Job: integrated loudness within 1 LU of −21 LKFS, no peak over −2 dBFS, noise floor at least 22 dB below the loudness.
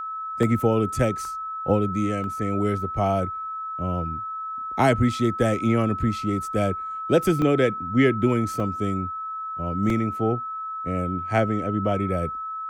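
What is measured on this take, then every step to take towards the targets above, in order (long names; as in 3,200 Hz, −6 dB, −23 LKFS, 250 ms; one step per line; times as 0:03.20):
number of dropouts 6; longest dropout 1.6 ms; interfering tone 1,300 Hz; level of the tone −29 dBFS; integrated loudness −24.5 LKFS; sample peak −7.0 dBFS; target loudness −21.0 LKFS
→ repair the gap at 0:00.43/0:01.25/0:02.24/0:07.42/0:08.60/0:09.90, 1.6 ms
notch filter 1,300 Hz, Q 30
level +3.5 dB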